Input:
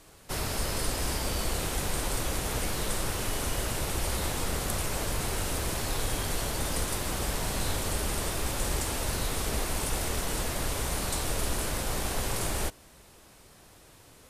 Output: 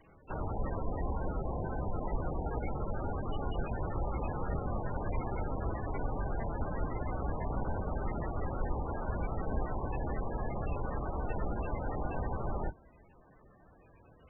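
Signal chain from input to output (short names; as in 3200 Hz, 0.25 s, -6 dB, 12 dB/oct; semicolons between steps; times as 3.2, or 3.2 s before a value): octaver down 1 oct, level -1 dB; dynamic EQ 800 Hz, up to +4 dB, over -55 dBFS, Q 6.6; gain -4 dB; MP3 8 kbps 24000 Hz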